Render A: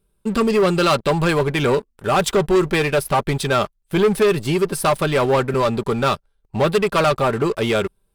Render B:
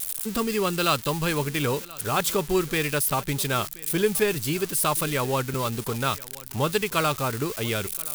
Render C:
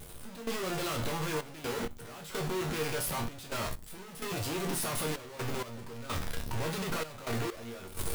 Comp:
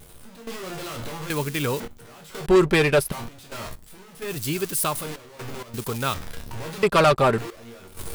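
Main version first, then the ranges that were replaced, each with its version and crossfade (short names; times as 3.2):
C
1.3–1.8 from B
2.46–3.12 from A
4.31–4.96 from B, crossfade 0.24 s
5.74–6.14 from B
6.83–7.38 from A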